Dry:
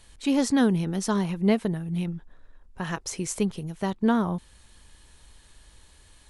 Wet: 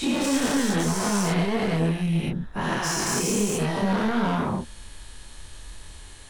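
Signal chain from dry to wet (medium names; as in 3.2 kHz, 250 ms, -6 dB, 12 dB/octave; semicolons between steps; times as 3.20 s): every event in the spectrogram widened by 480 ms; in parallel at +2 dB: compression, threshold -26 dBFS, peak gain reduction 13 dB; on the sum: saturation -17.5 dBFS, distortion -9 dB; chorus voices 2, 1.1 Hz, delay 27 ms, depth 3 ms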